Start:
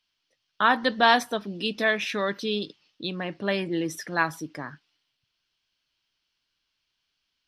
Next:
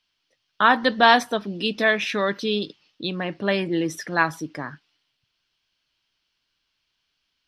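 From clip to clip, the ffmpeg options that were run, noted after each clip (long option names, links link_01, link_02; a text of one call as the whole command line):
ffmpeg -i in.wav -af "highshelf=frequency=8800:gain=-7,volume=4dB" out.wav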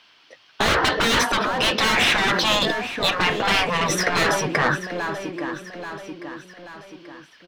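ffmpeg -i in.wav -filter_complex "[0:a]asplit=2[link_01][link_02];[link_02]highpass=frequency=720:poles=1,volume=34dB,asoftclip=type=tanh:threshold=-1dB[link_03];[link_01][link_03]amix=inputs=2:normalize=0,lowpass=frequency=1200:poles=1,volume=-6dB,aecho=1:1:834|1668|2502|3336:0.158|0.0745|0.035|0.0165,afftfilt=real='re*lt(hypot(re,im),0.631)':imag='im*lt(hypot(re,im),0.631)':win_size=1024:overlap=0.75,volume=1dB" out.wav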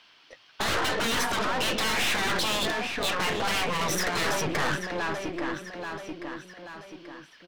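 ffmpeg -i in.wav -af "aeval=exprs='(tanh(20*val(0)+0.7)-tanh(0.7))/20':channel_layout=same,volume=1.5dB" out.wav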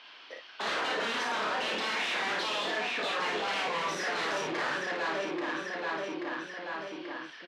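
ffmpeg -i in.wav -filter_complex "[0:a]asoftclip=type=tanh:threshold=-36.5dB,highpass=310,lowpass=4100,asplit=2[link_01][link_02];[link_02]aecho=0:1:31|56:0.531|0.668[link_03];[link_01][link_03]amix=inputs=2:normalize=0,volume=5dB" out.wav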